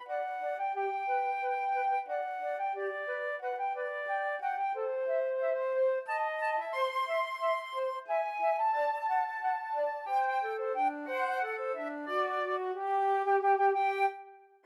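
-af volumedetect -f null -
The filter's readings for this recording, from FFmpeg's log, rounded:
mean_volume: -32.1 dB
max_volume: -16.9 dB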